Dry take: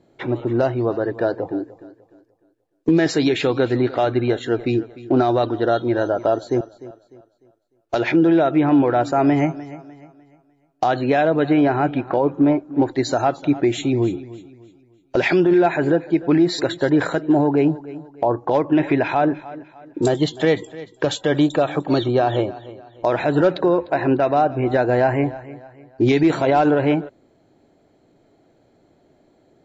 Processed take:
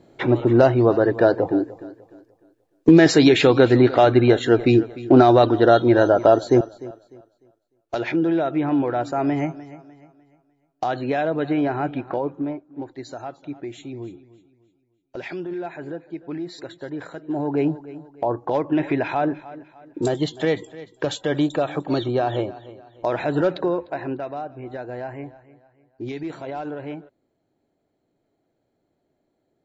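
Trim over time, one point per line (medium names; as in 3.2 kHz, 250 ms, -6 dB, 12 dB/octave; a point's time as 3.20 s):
6.57 s +4.5 dB
8.04 s -5.5 dB
12.15 s -5.5 dB
12.66 s -15 dB
17.14 s -15 dB
17.59 s -4 dB
23.59 s -4 dB
24.46 s -15 dB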